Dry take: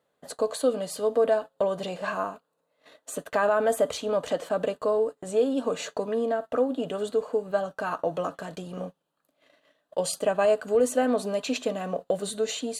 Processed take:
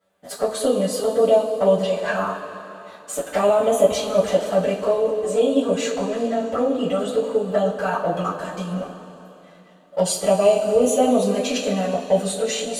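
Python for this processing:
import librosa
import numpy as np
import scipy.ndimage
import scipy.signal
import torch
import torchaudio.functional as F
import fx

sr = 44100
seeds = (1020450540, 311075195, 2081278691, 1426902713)

y = fx.env_flanger(x, sr, rest_ms=10.5, full_db=-21.5)
y = fx.rev_double_slope(y, sr, seeds[0], early_s=0.25, late_s=3.2, knee_db=-18, drr_db=-9.5)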